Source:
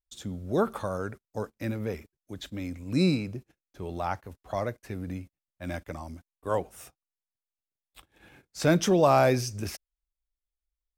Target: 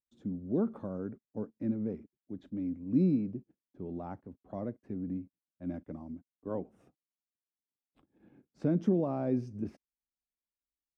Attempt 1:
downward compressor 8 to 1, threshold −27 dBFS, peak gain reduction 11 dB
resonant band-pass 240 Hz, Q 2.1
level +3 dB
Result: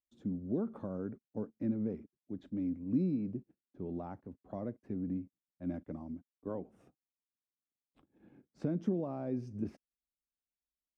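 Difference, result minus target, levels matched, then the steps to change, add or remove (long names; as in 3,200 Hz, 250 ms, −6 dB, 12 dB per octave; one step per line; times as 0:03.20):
downward compressor: peak gain reduction +6 dB
change: downward compressor 8 to 1, threshold −20 dBFS, peak gain reduction 5 dB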